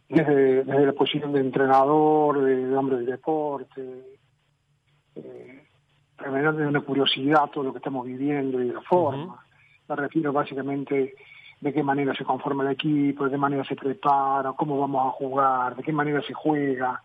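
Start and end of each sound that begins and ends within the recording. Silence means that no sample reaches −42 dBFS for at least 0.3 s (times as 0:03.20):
0:05.17–0:05.59
0:06.19–0:09.40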